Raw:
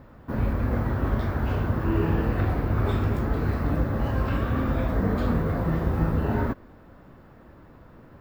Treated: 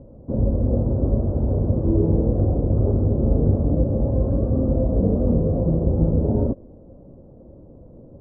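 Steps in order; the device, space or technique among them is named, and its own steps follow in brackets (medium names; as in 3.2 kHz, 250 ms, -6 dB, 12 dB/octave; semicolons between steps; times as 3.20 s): 3.15–3.62 s: doubling 41 ms -3.5 dB; under water (low-pass 590 Hz 24 dB/octave; peaking EQ 540 Hz +6.5 dB 0.25 oct); trim +5 dB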